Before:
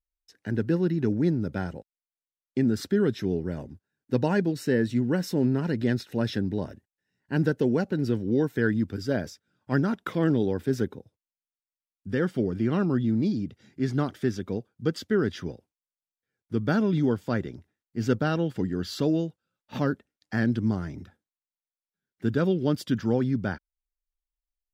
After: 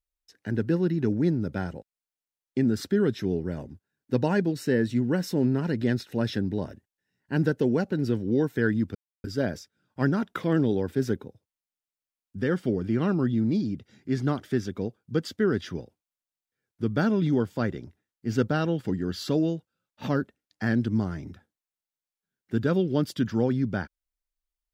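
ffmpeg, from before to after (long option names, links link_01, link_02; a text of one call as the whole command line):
ffmpeg -i in.wav -filter_complex "[0:a]asplit=2[link_01][link_02];[link_01]atrim=end=8.95,asetpts=PTS-STARTPTS,afade=type=out:start_time=8.946:duration=0.004:curve=hsin,apad=pad_dur=0.29[link_03];[link_02]atrim=start=8.95,asetpts=PTS-STARTPTS,afade=type=in:duration=0.004:curve=hsin[link_04];[link_03][link_04]concat=n=2:v=0:a=1" out.wav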